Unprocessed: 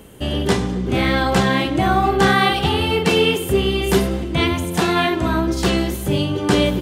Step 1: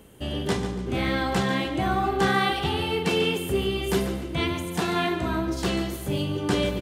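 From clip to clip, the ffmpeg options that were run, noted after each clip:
ffmpeg -i in.wav -af "aecho=1:1:143|286|429|572:0.266|0.104|0.0405|0.0158,volume=-8dB" out.wav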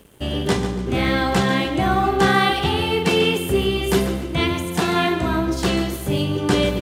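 ffmpeg -i in.wav -af "aeval=exprs='sgn(val(0))*max(abs(val(0))-0.00188,0)':channel_layout=same,volume=6dB" out.wav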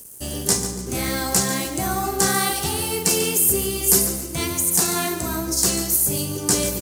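ffmpeg -i in.wav -af "aexciter=amount=12.5:drive=5.5:freq=5000,volume=-6dB" out.wav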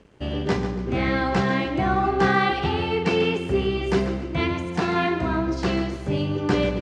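ffmpeg -i in.wav -af "lowpass=frequency=3000:width=0.5412,lowpass=frequency=3000:width=1.3066,volume=3dB" out.wav

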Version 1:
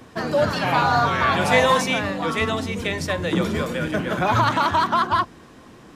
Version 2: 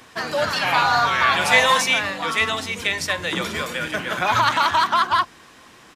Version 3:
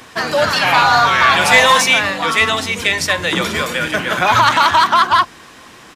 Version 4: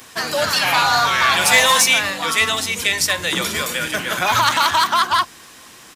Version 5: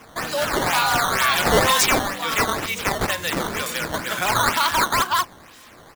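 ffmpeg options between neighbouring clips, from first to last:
ffmpeg -i in.wav -af "firequalizer=gain_entry='entry(210,0);entry(880,9);entry(2100,14)':delay=0.05:min_phase=1,volume=-8.5dB" out.wav
ffmpeg -i in.wav -af "asoftclip=type=tanh:threshold=-9dB,volume=7.5dB" out.wav
ffmpeg -i in.wav -af "crystalizer=i=2.5:c=0,volume=-6dB" out.wav
ffmpeg -i in.wav -af "acrusher=samples=10:mix=1:aa=0.000001:lfo=1:lforange=16:lforate=2.1,volume=-3.5dB" out.wav

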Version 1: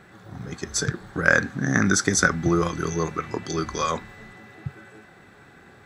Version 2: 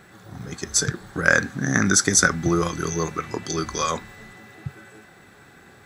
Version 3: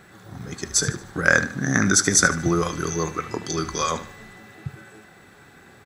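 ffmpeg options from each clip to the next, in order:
ffmpeg -i in.wav -af "highshelf=frequency=5500:gain=10" out.wav
ffmpeg -i in.wav -af "aecho=1:1:75|150|225|300:0.2|0.0758|0.0288|0.0109" out.wav

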